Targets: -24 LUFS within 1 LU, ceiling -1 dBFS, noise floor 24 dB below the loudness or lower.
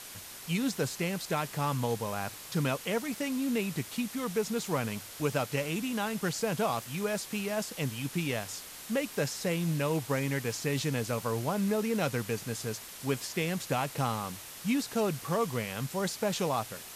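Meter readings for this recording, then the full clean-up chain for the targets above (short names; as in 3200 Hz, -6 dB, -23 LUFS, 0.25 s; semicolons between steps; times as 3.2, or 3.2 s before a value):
noise floor -46 dBFS; noise floor target -57 dBFS; loudness -32.5 LUFS; peak -16.5 dBFS; loudness target -24.0 LUFS
-> noise print and reduce 11 dB; gain +8.5 dB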